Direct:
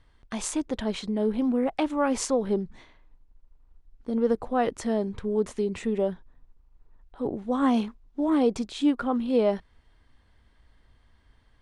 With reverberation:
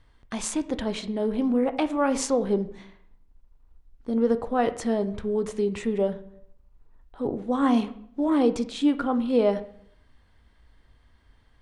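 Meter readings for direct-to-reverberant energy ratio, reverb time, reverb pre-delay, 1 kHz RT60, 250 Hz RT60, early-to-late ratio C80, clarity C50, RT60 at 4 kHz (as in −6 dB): 10.5 dB, 0.65 s, 14 ms, 0.65 s, 0.70 s, 18.0 dB, 14.5 dB, 0.55 s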